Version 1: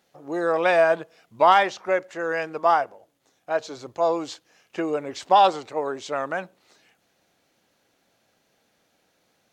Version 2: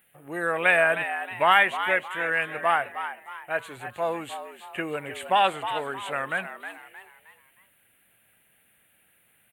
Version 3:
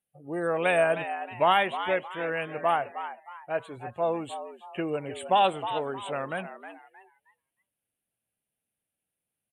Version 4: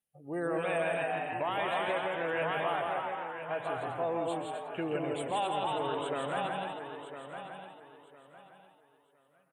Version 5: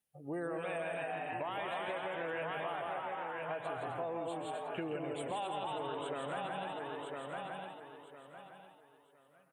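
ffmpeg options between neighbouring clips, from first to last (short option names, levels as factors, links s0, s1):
-filter_complex "[0:a]firequalizer=gain_entry='entry(110,0);entry(290,-10);entry(1000,-8);entry(1700,3);entry(2800,3);entry(5300,-29);entry(9100,11)':delay=0.05:min_phase=1,asplit=2[s0][s1];[s1]asplit=4[s2][s3][s4][s5];[s2]adelay=312,afreqshift=100,volume=0.316[s6];[s3]adelay=624,afreqshift=200,volume=0.126[s7];[s4]adelay=936,afreqshift=300,volume=0.0507[s8];[s5]adelay=1248,afreqshift=400,volume=0.0202[s9];[s6][s7][s8][s9]amix=inputs=4:normalize=0[s10];[s0][s10]amix=inputs=2:normalize=0,volume=1.41"
-af "afftdn=nr=22:nf=-45,lowpass=f=12000:w=0.5412,lowpass=f=12000:w=1.3066,equalizer=f=1800:w=0.97:g=-13,volume=1.41"
-filter_complex "[0:a]asplit=2[s0][s1];[s1]aecho=0:1:1007|2014|3021:0.282|0.0733|0.0191[s2];[s0][s2]amix=inputs=2:normalize=0,alimiter=limit=0.0891:level=0:latency=1:release=63,asplit=2[s3][s4];[s4]aecho=0:1:134.1|166.2|256.6:0.282|0.708|0.398[s5];[s3][s5]amix=inputs=2:normalize=0,volume=0.668"
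-af "acompressor=threshold=0.0112:ratio=4,volume=1.26"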